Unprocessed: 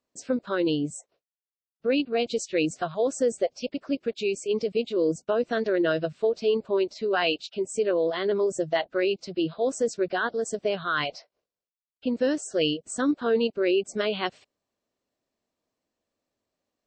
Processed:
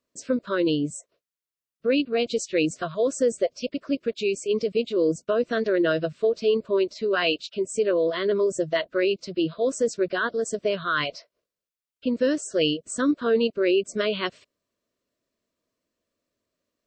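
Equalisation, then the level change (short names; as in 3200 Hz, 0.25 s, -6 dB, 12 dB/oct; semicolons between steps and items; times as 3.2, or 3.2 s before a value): Butterworth band-stop 810 Hz, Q 3.2; +2.0 dB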